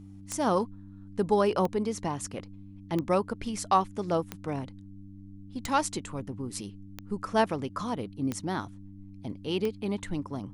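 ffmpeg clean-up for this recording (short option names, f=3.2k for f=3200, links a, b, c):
-af "adeclick=t=4,bandreject=f=97.9:t=h:w=4,bandreject=f=195.8:t=h:w=4,bandreject=f=293.7:t=h:w=4"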